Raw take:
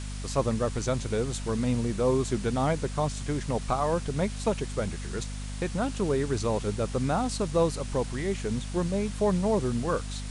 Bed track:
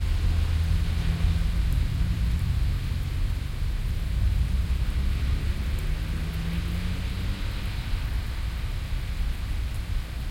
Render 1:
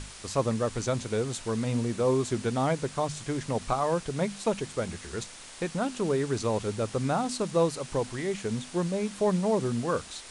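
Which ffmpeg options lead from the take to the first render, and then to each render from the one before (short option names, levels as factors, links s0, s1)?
-af "bandreject=f=50:t=h:w=6,bandreject=f=100:t=h:w=6,bandreject=f=150:t=h:w=6,bandreject=f=200:t=h:w=6,bandreject=f=250:t=h:w=6"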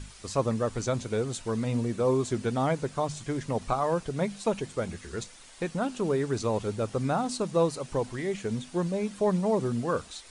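-af "afftdn=nr=8:nf=-46"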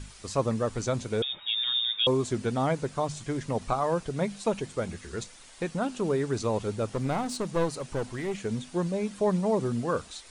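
-filter_complex "[0:a]asettb=1/sr,asplit=3[s0][s1][s2];[s0]atrim=end=1.224[s3];[s1]atrim=start=1.22:end=2.07,asetpts=PTS-STARTPTS,afade=t=in:d=0.004:c=qsin,afade=t=out:st=0.846:d=0.004:c=qsin,lowpass=f=3200:t=q:w=0.5098,lowpass=f=3200:t=q:w=0.6013,lowpass=f=3200:t=q:w=0.9,lowpass=f=3200:t=q:w=2.563,afreqshift=-3800[s4];[s2]atrim=start=2.066[s5];[s3][s4]acrossfade=d=0.004:c1=hsin:c2=qsin[s6];[s6][s5]acrossfade=d=0.004:c1=qsin:c2=hsin,asettb=1/sr,asplit=3[s7][s8][s9];[s7]atrim=end=6.924[s10];[s8]atrim=start=6.92:end=8.37,asetpts=PTS-STARTPTS,afade=t=in:d=0.004:c=qsin,afade=t=out:st=1.446:d=0.004:c=qsin,aeval=exprs='clip(val(0),-1,0.0299)':c=same[s11];[s9]atrim=start=8.366[s12];[s10][s11]acrossfade=d=0.004:c1=hsin:c2=qsin[s13];[s13][s12]acrossfade=d=0.004:c1=qsin:c2=hsin"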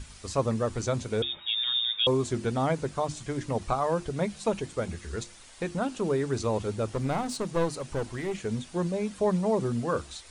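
-af "equalizer=f=67:t=o:w=0.56:g=10.5,bandreject=f=50:t=h:w=6,bandreject=f=100:t=h:w=6,bandreject=f=150:t=h:w=6,bandreject=f=200:t=h:w=6,bandreject=f=250:t=h:w=6,bandreject=f=300:t=h:w=6,bandreject=f=350:t=h:w=6"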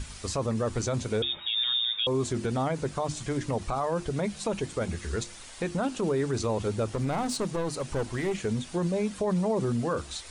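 -filter_complex "[0:a]asplit=2[s0][s1];[s1]acompressor=threshold=0.0178:ratio=6,volume=0.841[s2];[s0][s2]amix=inputs=2:normalize=0,alimiter=limit=0.1:level=0:latency=1:release=21"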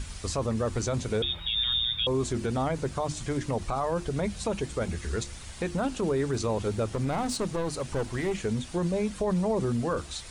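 -filter_complex "[1:a]volume=0.119[s0];[0:a][s0]amix=inputs=2:normalize=0"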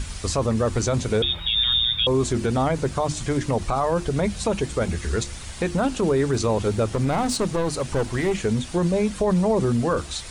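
-af "volume=2.11"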